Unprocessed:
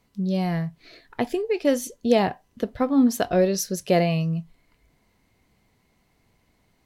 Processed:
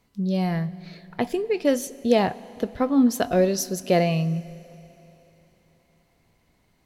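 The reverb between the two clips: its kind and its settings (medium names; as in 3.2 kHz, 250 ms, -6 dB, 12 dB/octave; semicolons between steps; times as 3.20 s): Schroeder reverb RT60 3.6 s, combs from 33 ms, DRR 18.5 dB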